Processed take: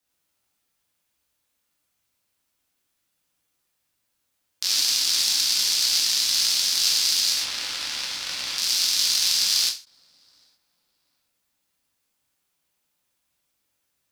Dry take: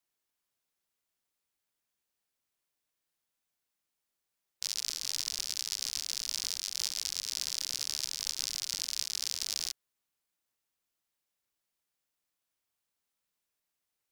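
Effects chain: 7.32–8.57 s: tone controls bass 0 dB, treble -15 dB; waveshaping leveller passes 1; frequency shift -300 Hz; tape echo 722 ms, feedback 35%, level -23 dB, low-pass 2 kHz; gated-style reverb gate 150 ms flat, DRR -5 dB; endings held to a fixed fall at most 190 dB/s; trim +6 dB

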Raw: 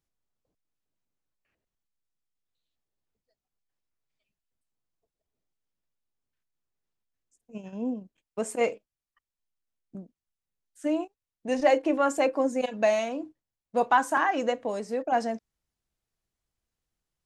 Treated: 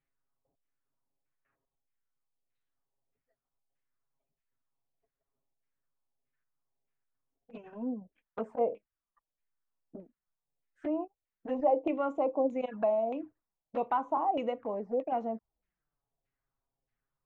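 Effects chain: compression 1.5:1, threshold -38 dBFS, peak gain reduction 8 dB; LFO low-pass saw down 1.6 Hz 620–2300 Hz; touch-sensitive flanger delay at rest 7.4 ms, full sweep at -28 dBFS

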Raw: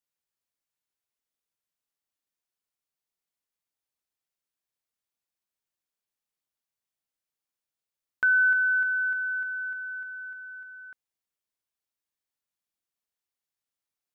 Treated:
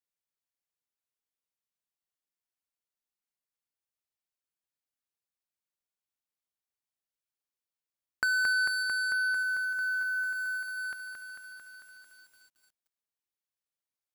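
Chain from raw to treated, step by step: 10.35–10.77 s: bass shelf 500 Hz -4.5 dB; waveshaping leveller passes 3; compression 8:1, threshold -27 dBFS, peak gain reduction 8 dB; bit-crushed delay 223 ms, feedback 80%, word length 10-bit, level -5 dB

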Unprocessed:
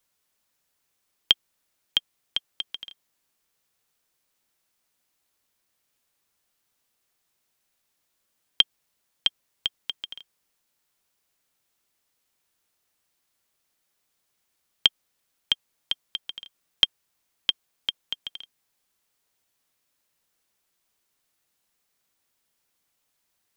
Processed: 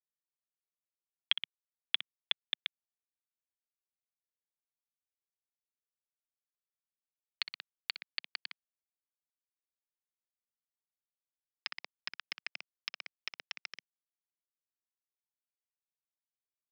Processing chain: gliding tape speed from 96% -> 186%; differentiator; on a send: feedback echo behind a high-pass 61 ms, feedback 66%, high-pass 1.6 kHz, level -14 dB; on the sum: bit crusher 5-bit; peaking EQ 2.1 kHz +13.5 dB 1.4 oct; in parallel at +1 dB: peak limiter -9.5 dBFS, peak gain reduction 9 dB; on the sum: high-pass 170 Hz 24 dB/octave; compression, threshold -19 dBFS, peak gain reduction 10 dB; low-pass 3.2 kHz 24 dB/octave; trim -4 dB

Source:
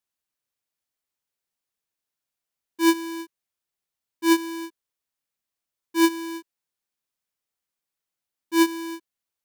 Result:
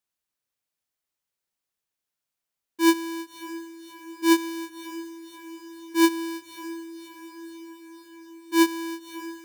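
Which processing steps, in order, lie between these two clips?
echo that smears into a reverb 587 ms, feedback 66%, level -15 dB

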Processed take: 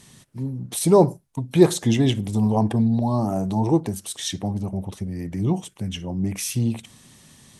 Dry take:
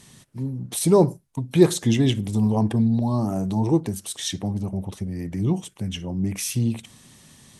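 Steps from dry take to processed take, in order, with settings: dynamic bell 740 Hz, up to +5 dB, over -39 dBFS, Q 1.4

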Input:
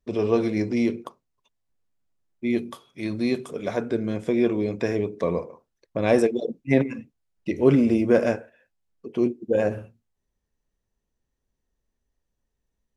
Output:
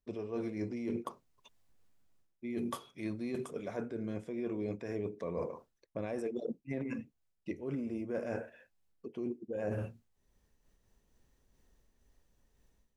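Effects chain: dynamic bell 3.8 kHz, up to -7 dB, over -51 dBFS, Q 1.7; level rider gain up to 14.5 dB; peak limiter -6 dBFS, peak gain reduction 5 dB; reverse; compression 16:1, threshold -28 dBFS, peak gain reduction 18.5 dB; reverse; random flutter of the level, depth 55%; trim -3.5 dB

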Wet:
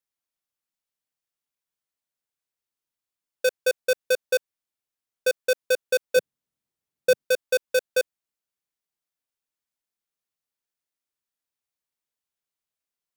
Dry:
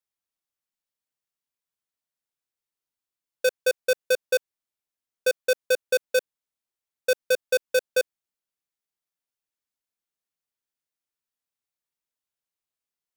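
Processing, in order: 6.16–7.25 s: peaking EQ 150 Hz +13.5 dB 2.4 oct

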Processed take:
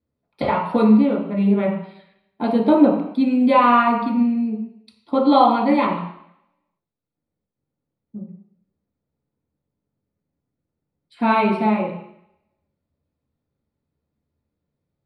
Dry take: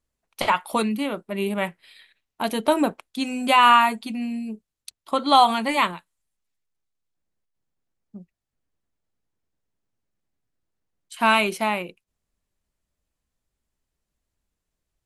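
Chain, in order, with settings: boxcar filter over 7 samples; peaking EQ 180 Hz +3.5 dB 1.6 oct; reverberation RT60 0.70 s, pre-delay 3 ms, DRR -4 dB; trim -10 dB

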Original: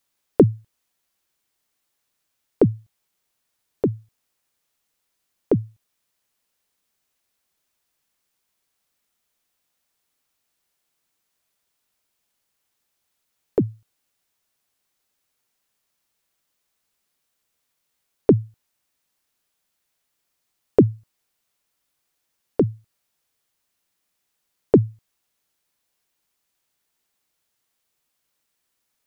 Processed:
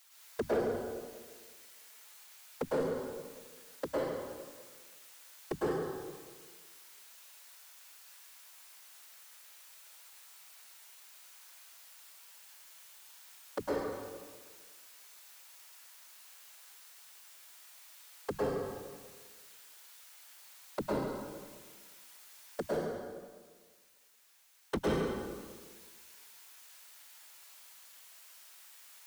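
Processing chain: high-pass 880 Hz 12 dB/octave; 22.66–24.79 s: waveshaping leveller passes 5; peak limiter -25 dBFS, peak gain reduction 11.5 dB; compression 4:1, threshold -45 dBFS, peak gain reduction 14.5 dB; hard clipper -32.5 dBFS, distortion -16 dB; whisper effect; plate-style reverb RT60 1.5 s, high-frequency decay 0.8×, pre-delay 95 ms, DRR -7 dB; saturation -38 dBFS, distortion -12 dB; trim +13 dB

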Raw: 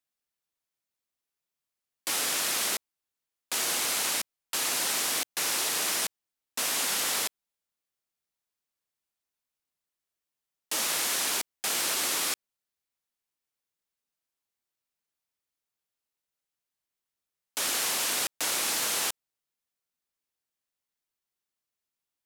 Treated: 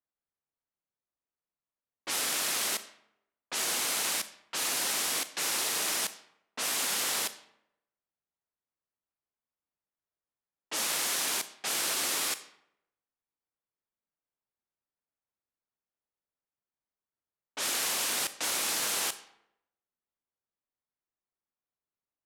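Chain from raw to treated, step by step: Schroeder reverb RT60 0.81 s, combs from 29 ms, DRR 13 dB; level-controlled noise filter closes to 1.4 kHz, open at -26 dBFS; trim -2 dB

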